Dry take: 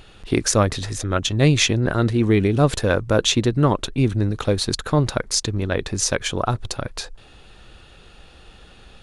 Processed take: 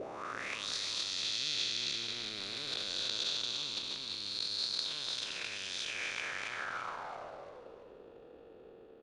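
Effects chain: time blur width 0.805 s; transient shaper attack -6 dB, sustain +11 dB; auto-wah 370–4300 Hz, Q 4.4, up, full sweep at -22.5 dBFS; frequency-shifting echo 0.338 s, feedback 38%, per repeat -110 Hz, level -10.5 dB; gain +6.5 dB

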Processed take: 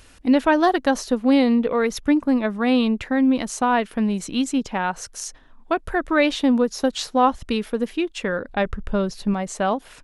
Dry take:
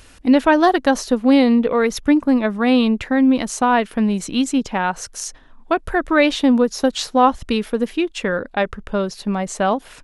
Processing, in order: 8.49–9.34 low shelf 150 Hz +11 dB; gain -3.5 dB

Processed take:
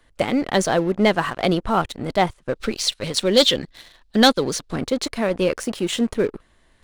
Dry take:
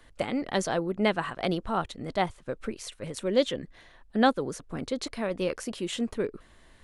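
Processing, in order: 2.55–4.76 bell 4200 Hz +14 dB 1.2 oct; sample leveller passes 2; gain +1.5 dB

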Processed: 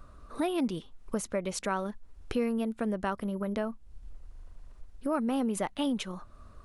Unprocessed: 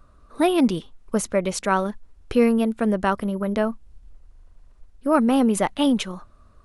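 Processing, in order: compressor 2:1, threshold -40 dBFS, peak gain reduction 14.5 dB; gain +2 dB

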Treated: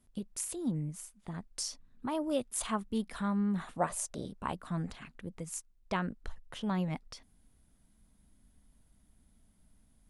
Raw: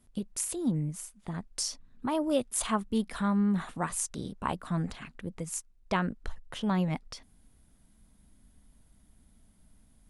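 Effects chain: 3.78–4.26 bell 610 Hz +13 dB 0.81 oct; gain -4.5 dB

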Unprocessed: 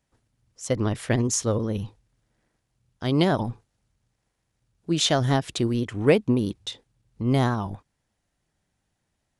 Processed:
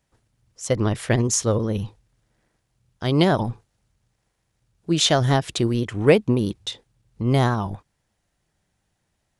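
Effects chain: bell 260 Hz -4.5 dB 0.27 oct; gain +3.5 dB

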